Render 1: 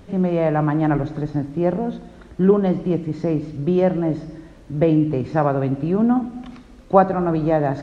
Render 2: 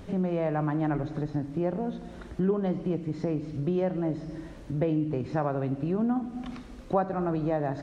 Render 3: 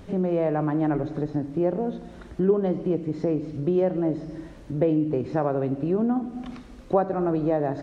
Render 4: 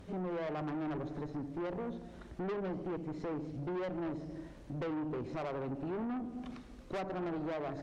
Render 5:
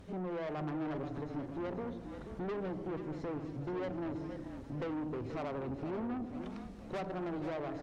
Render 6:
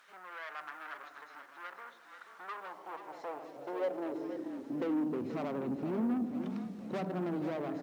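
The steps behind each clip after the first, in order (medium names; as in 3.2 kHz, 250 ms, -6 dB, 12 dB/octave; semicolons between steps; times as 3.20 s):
compression 2:1, threshold -32 dBFS, peak gain reduction 13.5 dB
dynamic bell 420 Hz, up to +7 dB, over -41 dBFS, Q 1
valve stage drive 28 dB, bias 0.35; trim -6.5 dB
frequency-shifting echo 482 ms, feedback 54%, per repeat -34 Hz, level -9 dB; trim -1 dB
companded quantiser 8-bit; high-pass sweep 1.4 kHz -> 200 Hz, 2.22–5.34 s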